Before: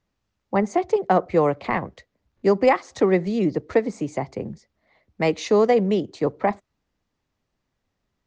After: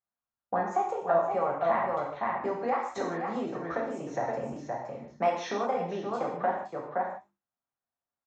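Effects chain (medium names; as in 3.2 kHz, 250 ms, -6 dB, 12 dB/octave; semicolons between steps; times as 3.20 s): resampled via 16 kHz; wow and flutter 150 cents; delay 518 ms -10 dB; compression 6:1, threshold -29 dBFS, peak gain reduction 16 dB; high-order bell 990 Hz +10 dB; band-stop 4.7 kHz, Q 6.6; de-hum 49.43 Hz, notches 7; gate with hold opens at -44 dBFS; bass shelf 71 Hz -11 dB; reverberation, pre-delay 3 ms, DRR -3.5 dB; endings held to a fixed fall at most 350 dB/s; trim -6.5 dB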